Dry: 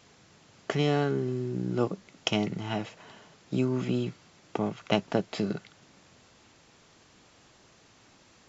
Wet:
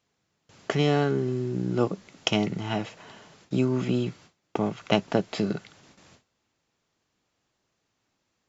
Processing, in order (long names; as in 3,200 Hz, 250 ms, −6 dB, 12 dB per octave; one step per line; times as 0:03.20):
noise gate with hold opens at −46 dBFS
level +3 dB